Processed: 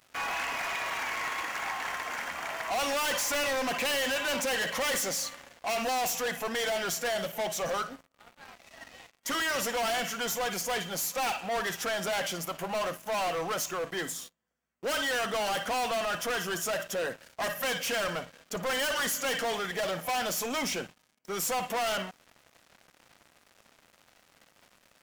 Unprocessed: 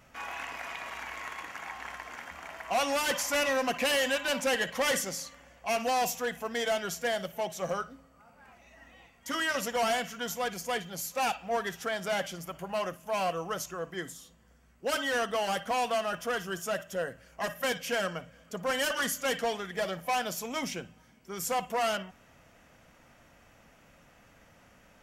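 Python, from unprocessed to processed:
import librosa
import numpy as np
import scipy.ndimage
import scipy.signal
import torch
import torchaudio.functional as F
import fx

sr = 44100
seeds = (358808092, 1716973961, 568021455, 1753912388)

y = fx.highpass(x, sr, hz=330.0, slope=6)
y = fx.leveller(y, sr, passes=5)
y = y * 10.0 ** (-8.5 / 20.0)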